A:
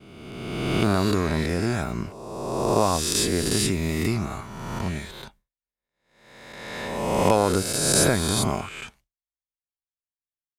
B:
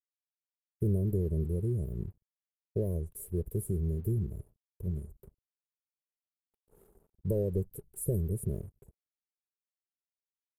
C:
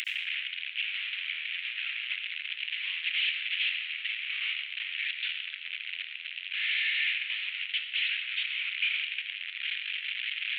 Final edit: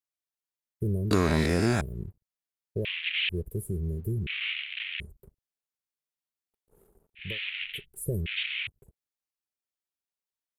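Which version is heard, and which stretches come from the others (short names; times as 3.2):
B
1.11–1.81 from A
2.85–3.29 from C
4.27–5 from C
7.27–7.74 from C, crossfade 0.24 s
8.26–8.67 from C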